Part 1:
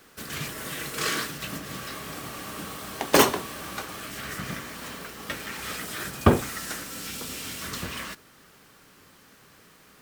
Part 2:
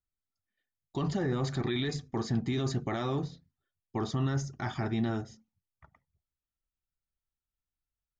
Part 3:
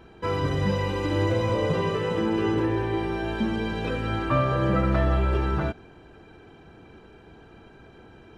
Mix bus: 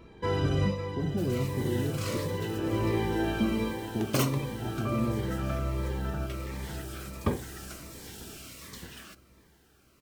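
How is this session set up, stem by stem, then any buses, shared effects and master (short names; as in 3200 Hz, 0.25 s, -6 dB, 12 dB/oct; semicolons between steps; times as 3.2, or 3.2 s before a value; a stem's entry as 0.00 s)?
-10.0 dB, 1.00 s, no send, no echo send, dry
+1.0 dB, 0.00 s, muted 2.17–3.54, no send, no echo send, Chebyshev low-pass 530 Hz, order 2
-0.5 dB, 0.00 s, no send, echo send -9.5 dB, auto duck -21 dB, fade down 0.30 s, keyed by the second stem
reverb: off
echo: feedback echo 0.551 s, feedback 55%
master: cascading phaser falling 1.4 Hz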